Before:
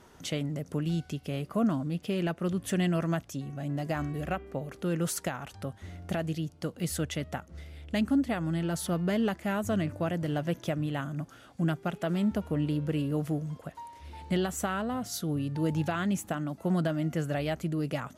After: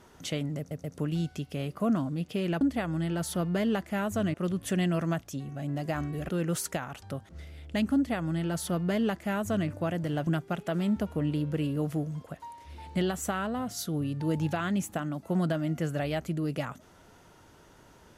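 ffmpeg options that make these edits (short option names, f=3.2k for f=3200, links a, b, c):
-filter_complex "[0:a]asplit=8[a][b][c][d][e][f][g][h];[a]atrim=end=0.712[i];[b]atrim=start=0.578:end=0.712[j];[c]atrim=start=0.578:end=2.352[k];[d]atrim=start=8.138:end=9.872[l];[e]atrim=start=2.348:end=4.302[m];[f]atrim=start=4.808:end=5.812[n];[g]atrim=start=7.478:end=10.462[o];[h]atrim=start=11.618[p];[i][j]acrossfade=d=0.004:c1=hsin:c2=hsin[q];[q][k]acrossfade=d=0.004:c1=hsin:c2=hsin[r];[r][l]acrossfade=d=0.004:c1=hsin:c2=hsin[s];[s][m]acrossfade=d=0.004:c1=hsin:c2=hsin[t];[t][n]acrossfade=d=0.004:c1=hsin:c2=hsin[u];[u][o]acrossfade=d=0.004:c1=hsin:c2=hsin[v];[v][p]acrossfade=d=0.004:c1=hsin:c2=hsin"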